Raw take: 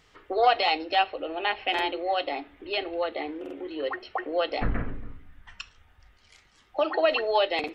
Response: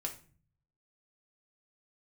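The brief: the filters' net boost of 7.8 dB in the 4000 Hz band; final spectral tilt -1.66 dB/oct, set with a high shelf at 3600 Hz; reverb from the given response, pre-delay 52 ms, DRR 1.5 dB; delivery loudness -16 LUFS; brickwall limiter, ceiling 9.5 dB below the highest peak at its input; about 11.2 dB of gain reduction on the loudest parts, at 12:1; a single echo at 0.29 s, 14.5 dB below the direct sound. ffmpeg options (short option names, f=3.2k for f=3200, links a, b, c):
-filter_complex "[0:a]highshelf=f=3.6k:g=4.5,equalizer=f=4k:t=o:g=8,acompressor=threshold=-26dB:ratio=12,alimiter=level_in=0.5dB:limit=-24dB:level=0:latency=1,volume=-0.5dB,aecho=1:1:290:0.188,asplit=2[a][b];[1:a]atrim=start_sample=2205,adelay=52[c];[b][c]afir=irnorm=-1:irlink=0,volume=-1.5dB[d];[a][d]amix=inputs=2:normalize=0,volume=16.5dB"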